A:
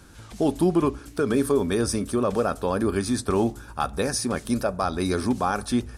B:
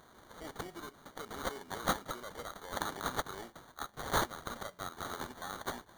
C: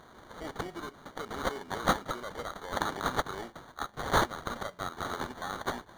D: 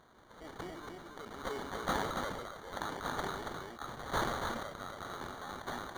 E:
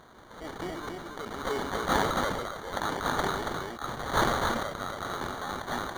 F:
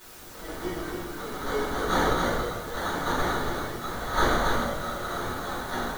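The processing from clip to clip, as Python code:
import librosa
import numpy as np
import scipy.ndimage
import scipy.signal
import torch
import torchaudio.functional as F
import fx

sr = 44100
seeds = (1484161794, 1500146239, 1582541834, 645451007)

y1 = np.diff(x, prepend=0.0)
y1 = fx.spec_box(y1, sr, start_s=2.72, length_s=0.21, low_hz=1500.0, high_hz=11000.0, gain_db=12)
y1 = fx.sample_hold(y1, sr, seeds[0], rate_hz=2600.0, jitter_pct=0)
y1 = F.gain(torch.from_numpy(y1), -1.5).numpy()
y2 = fx.high_shelf(y1, sr, hz=7000.0, db=-11.0)
y2 = F.gain(torch.from_numpy(y2), 6.0).numpy()
y3 = y2 + 10.0 ** (-4.5 / 20.0) * np.pad(y2, (int(279 * sr / 1000.0), 0))[:len(y2)]
y3 = fx.sustainer(y3, sr, db_per_s=36.0)
y3 = F.gain(torch.from_numpy(y3), -9.0).numpy()
y4 = fx.attack_slew(y3, sr, db_per_s=170.0)
y4 = F.gain(torch.from_numpy(y4), 9.0).numpy()
y5 = fx.quant_dither(y4, sr, seeds[1], bits=8, dither='triangular')
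y5 = fx.room_shoebox(y5, sr, seeds[2], volume_m3=110.0, walls='mixed', distance_m=2.7)
y5 = F.gain(torch.from_numpy(y5), -8.5).numpy()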